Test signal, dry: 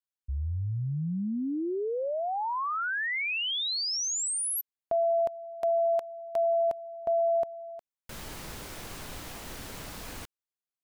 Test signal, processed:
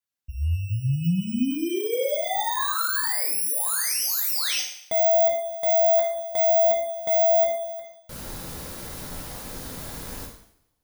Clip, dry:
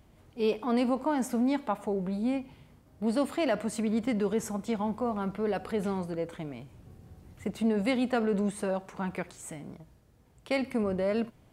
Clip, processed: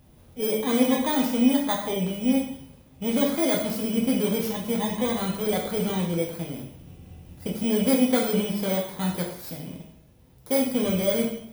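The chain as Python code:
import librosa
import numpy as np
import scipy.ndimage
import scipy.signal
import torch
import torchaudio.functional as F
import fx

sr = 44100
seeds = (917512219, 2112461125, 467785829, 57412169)

y = fx.bit_reversed(x, sr, seeds[0], block=16)
y = fx.rev_double_slope(y, sr, seeds[1], early_s=0.64, late_s=1.7, knee_db=-25, drr_db=-1.5)
y = y * librosa.db_to_amplitude(1.5)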